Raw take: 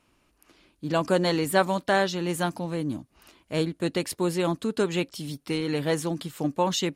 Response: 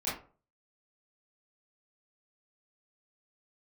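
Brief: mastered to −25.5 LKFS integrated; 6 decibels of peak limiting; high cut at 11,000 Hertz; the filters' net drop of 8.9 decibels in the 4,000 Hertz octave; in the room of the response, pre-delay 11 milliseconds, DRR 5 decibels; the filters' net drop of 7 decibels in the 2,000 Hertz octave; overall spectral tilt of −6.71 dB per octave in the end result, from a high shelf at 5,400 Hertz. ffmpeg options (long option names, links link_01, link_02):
-filter_complex "[0:a]lowpass=11000,equalizer=frequency=2000:width_type=o:gain=-7.5,equalizer=frequency=4000:width_type=o:gain=-6,highshelf=frequency=5400:gain=-6.5,alimiter=limit=-17.5dB:level=0:latency=1,asplit=2[link_01][link_02];[1:a]atrim=start_sample=2205,adelay=11[link_03];[link_02][link_03]afir=irnorm=-1:irlink=0,volume=-11dB[link_04];[link_01][link_04]amix=inputs=2:normalize=0,volume=2.5dB"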